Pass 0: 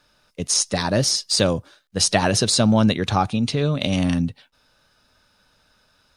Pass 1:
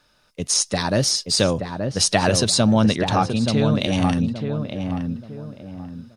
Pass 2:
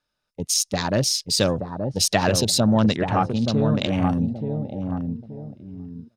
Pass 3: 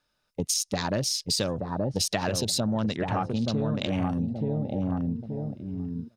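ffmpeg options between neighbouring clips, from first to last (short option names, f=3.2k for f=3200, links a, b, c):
-filter_complex "[0:a]asplit=2[a][b];[b]adelay=877,lowpass=f=1.3k:p=1,volume=-5dB,asplit=2[c][d];[d]adelay=877,lowpass=f=1.3k:p=1,volume=0.35,asplit=2[e][f];[f]adelay=877,lowpass=f=1.3k:p=1,volume=0.35,asplit=2[g][h];[h]adelay=877,lowpass=f=1.3k:p=1,volume=0.35[i];[a][c][e][g][i]amix=inputs=5:normalize=0"
-af "afwtdn=0.0316,volume=-1.5dB"
-af "acompressor=threshold=-28dB:ratio=6,volume=3.5dB"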